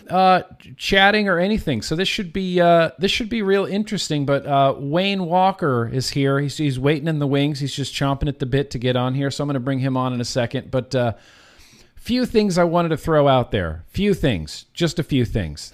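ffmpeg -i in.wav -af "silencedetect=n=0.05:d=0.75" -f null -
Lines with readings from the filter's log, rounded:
silence_start: 11.12
silence_end: 12.07 | silence_duration: 0.95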